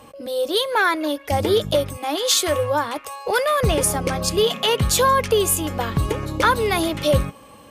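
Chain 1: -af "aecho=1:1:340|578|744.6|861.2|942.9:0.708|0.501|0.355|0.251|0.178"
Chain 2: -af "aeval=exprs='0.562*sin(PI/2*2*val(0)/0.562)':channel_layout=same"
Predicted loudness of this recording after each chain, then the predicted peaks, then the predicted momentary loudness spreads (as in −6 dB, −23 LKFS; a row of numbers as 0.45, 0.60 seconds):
−17.5, −12.0 LKFS; −4.0, −5.0 dBFS; 5, 6 LU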